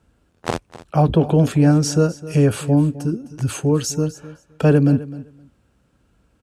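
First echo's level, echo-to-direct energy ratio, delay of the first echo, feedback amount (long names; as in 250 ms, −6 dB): −17.0 dB, −17.0 dB, 258 ms, 16%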